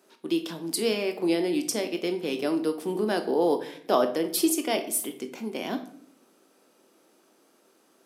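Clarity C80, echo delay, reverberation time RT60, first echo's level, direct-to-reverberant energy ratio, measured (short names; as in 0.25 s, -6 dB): 15.5 dB, none, 0.60 s, none, 7.0 dB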